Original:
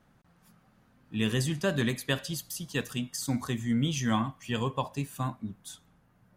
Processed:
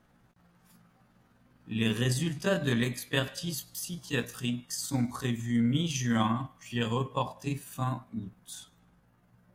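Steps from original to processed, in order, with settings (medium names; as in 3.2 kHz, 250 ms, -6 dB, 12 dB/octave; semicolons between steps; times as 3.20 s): granular stretch 1.5×, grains 101 ms; trim +1 dB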